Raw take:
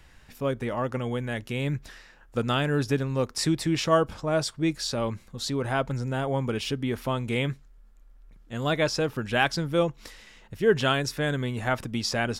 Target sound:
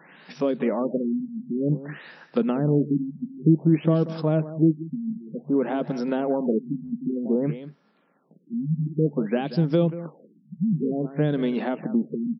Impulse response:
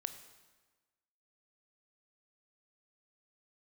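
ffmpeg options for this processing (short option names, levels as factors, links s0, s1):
-filter_complex "[0:a]acrossover=split=280|3000[s0][s1][s2];[s1]acompressor=threshold=0.0282:ratio=6[s3];[s0][s3][s2]amix=inputs=3:normalize=0,afftfilt=real='re*between(b*sr/4096,140,7800)':imag='im*between(b*sr/4096,140,7800)':win_size=4096:overlap=0.75,acrossover=split=670[s4][s5];[s4]crystalizer=i=8:c=0[s6];[s5]acompressor=threshold=0.00501:ratio=10[s7];[s6][s7]amix=inputs=2:normalize=0,aecho=1:1:185:0.2,afftfilt=real='re*lt(b*sr/1024,250*pow(5900/250,0.5+0.5*sin(2*PI*0.54*pts/sr)))':imag='im*lt(b*sr/1024,250*pow(5900/250,0.5+0.5*sin(2*PI*0.54*pts/sr)))':win_size=1024:overlap=0.75,volume=2.82"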